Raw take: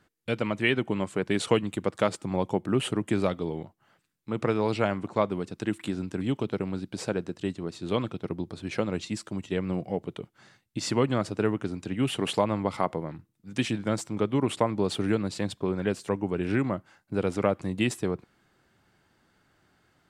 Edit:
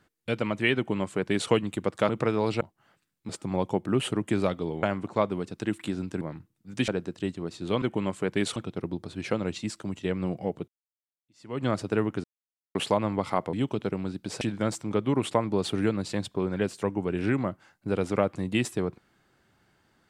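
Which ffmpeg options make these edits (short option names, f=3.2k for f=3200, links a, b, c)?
-filter_complex "[0:a]asplit=14[a][b][c][d][e][f][g][h][i][j][k][l][m][n];[a]atrim=end=2.092[o];[b]atrim=start=4.308:end=4.832[p];[c]atrim=start=3.628:end=4.312[q];[d]atrim=start=2.088:end=3.632[r];[e]atrim=start=4.828:end=6.212[s];[f]atrim=start=12.998:end=13.672[t];[g]atrim=start=7.088:end=8.032[u];[h]atrim=start=0.758:end=1.502[v];[i]atrim=start=8.028:end=10.15,asetpts=PTS-STARTPTS,afade=t=out:st=2.118:d=0.004:c=hsin[w];[j]atrim=start=10.15:end=11.71,asetpts=PTS-STARTPTS,afade=t=in:d=0.96:c=exp,afade=t=out:st=1.556:d=0.004:c=hsin[x];[k]atrim=start=11.71:end=12.22,asetpts=PTS-STARTPTS,volume=0[y];[l]atrim=start=12.22:end=13.002,asetpts=PTS-STARTPTS,afade=t=in:d=0.004:c=hsin[z];[m]atrim=start=6.208:end=7.092[aa];[n]atrim=start=13.668[ab];[o][p]acrossfade=d=0.004:c1=hsin:c2=hsin[ac];[ac][q]acrossfade=d=0.004:c1=hsin:c2=hsin[ad];[ad][r]acrossfade=d=0.004:c1=hsin:c2=hsin[ae];[ae][s]acrossfade=d=0.004:c1=hsin:c2=hsin[af];[af][t]acrossfade=d=0.004:c1=hsin:c2=hsin[ag];[ag][u]acrossfade=d=0.004:c1=hsin:c2=hsin[ah];[ah][v]acrossfade=d=0.004:c1=hsin:c2=hsin[ai];[w][x][y][z]concat=n=4:v=0:a=1[aj];[ai][aj]acrossfade=d=0.004:c1=hsin:c2=hsin[ak];[ak][aa]acrossfade=d=0.004:c1=hsin:c2=hsin[al];[al][ab]acrossfade=d=0.004:c1=hsin:c2=hsin"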